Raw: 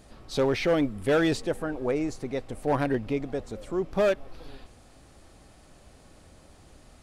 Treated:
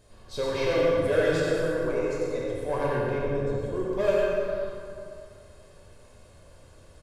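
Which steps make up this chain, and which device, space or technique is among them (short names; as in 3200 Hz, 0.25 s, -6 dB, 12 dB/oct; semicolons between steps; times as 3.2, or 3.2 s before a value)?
microphone above a desk (comb 1.9 ms, depth 50%; reverb RT60 0.45 s, pre-delay 84 ms, DRR 2.5 dB); 3.18–3.76 tilt shelf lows +4 dB; plate-style reverb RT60 2.5 s, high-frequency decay 0.55×, DRR -4.5 dB; gain -8 dB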